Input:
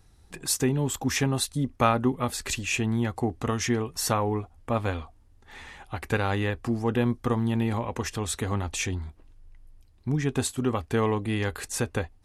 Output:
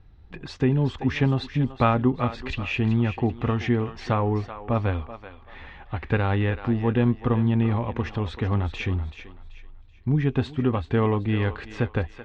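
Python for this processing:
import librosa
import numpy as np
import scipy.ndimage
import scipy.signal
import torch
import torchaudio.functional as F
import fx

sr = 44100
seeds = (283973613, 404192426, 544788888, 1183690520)

p1 = scipy.signal.sosfilt(scipy.signal.butter(4, 3500.0, 'lowpass', fs=sr, output='sos'), x)
p2 = fx.low_shelf(p1, sr, hz=230.0, db=7.0)
y = p2 + fx.echo_thinned(p2, sr, ms=382, feedback_pct=33, hz=560.0, wet_db=-10.5, dry=0)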